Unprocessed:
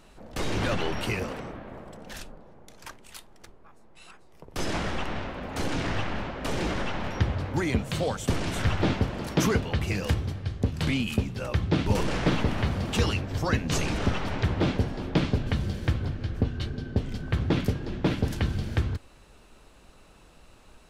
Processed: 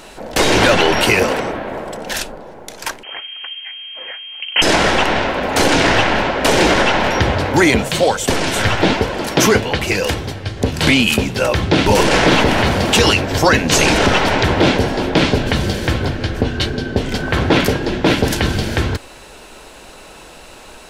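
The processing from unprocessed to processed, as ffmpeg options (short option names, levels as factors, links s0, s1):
-filter_complex "[0:a]asettb=1/sr,asplit=3[s0][s1][s2];[s0]atrim=end=3.034[s3];[s1]atrim=start=3.03:end=4.62,asetpts=PTS-STARTPTS,afade=t=in:d=0.004:c=qsin,afade=t=out:st=1.586:d=0.004:c=qsin,lowpass=f=2700:t=q:w=0.5098,lowpass=f=2700:t=q:w=0.6013,lowpass=f=2700:t=q:w=0.9,lowpass=f=2700:t=q:w=2.563,afreqshift=-3200[s4];[s2]atrim=start=4.616[s5];[s3][s4]acrossfade=d=0.004:c1=hsin:c2=qsin[s6];[s6][s5]acrossfade=d=0.004:c1=qsin:c2=hsin,asplit=3[s7][s8][s9];[s7]afade=t=out:st=7.87:d=0.02[s10];[s8]flanger=delay=1.9:depth=7.7:regen=58:speed=1.1:shape=sinusoidal,afade=t=in:st=7.87:d=0.02,afade=t=out:st=10.56:d=0.02[s11];[s9]afade=t=in:st=10.56:d=0.02[s12];[s10][s11][s12]amix=inputs=3:normalize=0,asettb=1/sr,asplit=3[s13][s14][s15];[s13]atrim=end=17.124[s16];[s14]atrim=start=17.12:end=17.77,asetpts=PTS-STARTPTS,afade=t=in:d=0.004:c=qsin,afade=t=out:st=0.646:d=0.004:c=qsin,equalizer=f=1000:t=o:w=2.6:g=4[s17];[s15]atrim=start=17.766[s18];[s16][s17]acrossfade=d=0.004:c1=hsin:c2=qsin[s19];[s19][s18]acrossfade=d=0.004:c1=qsin:c2=hsin,bass=f=250:g=-11,treble=f=4000:g=1,bandreject=f=1200:w=10,alimiter=level_in=10.6:limit=0.891:release=50:level=0:latency=1,volume=0.891"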